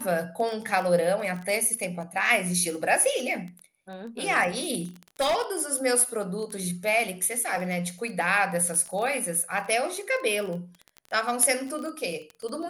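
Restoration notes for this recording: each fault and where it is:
crackle 17 per s -31 dBFS
5.20–5.61 s: clipped -20.5 dBFS

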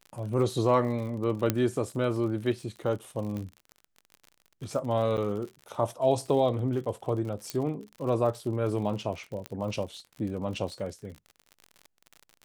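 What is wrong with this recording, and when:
crackle 53 per s -37 dBFS
1.50 s: pop -10 dBFS
3.37 s: pop -24 dBFS
5.17–5.18 s: dropout 7.7 ms
7.50 s: pop -16 dBFS
9.46 s: pop -20 dBFS

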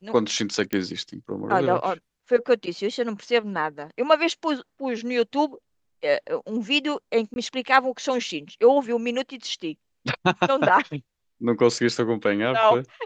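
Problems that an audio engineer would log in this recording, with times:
0.73 s: pop -11 dBFS
7.34–7.36 s: dropout 21 ms

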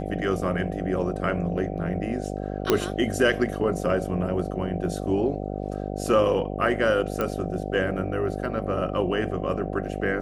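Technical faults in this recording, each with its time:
buzz 50 Hz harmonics 15 -31 dBFS
2.70 s: pop -5 dBFS
7.21 s: pop -13 dBFS

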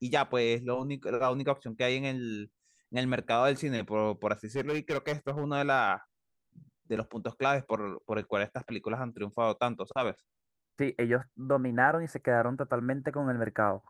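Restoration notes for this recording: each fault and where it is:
4.56–5.44 s: clipped -26.5 dBFS

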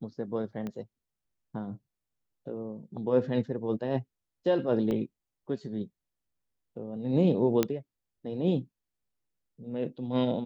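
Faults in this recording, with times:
0.67 s: pop -24 dBFS
4.91 s: dropout 2 ms
7.63 s: pop -11 dBFS

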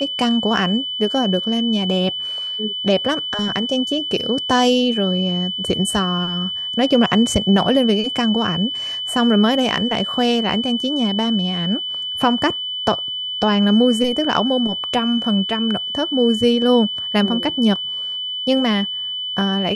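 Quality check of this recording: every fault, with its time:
whine 3 kHz -23 dBFS

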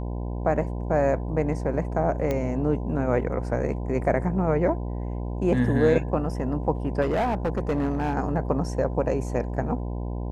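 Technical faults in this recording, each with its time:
buzz 60 Hz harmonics 17 -30 dBFS
2.31 s: pop -14 dBFS
7.01–8.14 s: clipped -20 dBFS

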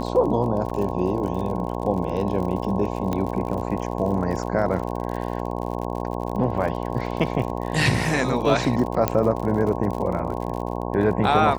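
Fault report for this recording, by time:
buzz 60 Hz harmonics 18 -28 dBFS
crackle 56 per s -30 dBFS
0.70 s: dropout 3.2 ms
3.13 s: pop -13 dBFS
4.66 s: dropout 3 ms
9.08 s: pop -6 dBFS

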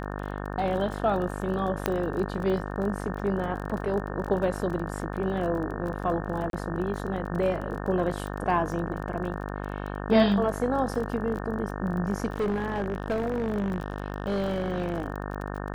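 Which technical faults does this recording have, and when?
buzz 50 Hz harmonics 36 -34 dBFS
crackle 24 per s -33 dBFS
1.86 s: pop -10 dBFS
6.50–6.53 s: dropout 32 ms
12.32–15.04 s: clipped -23 dBFS

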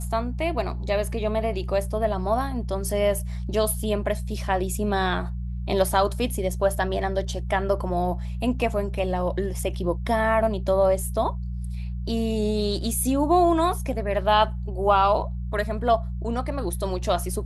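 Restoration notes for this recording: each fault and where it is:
hum 60 Hz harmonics 3 -30 dBFS

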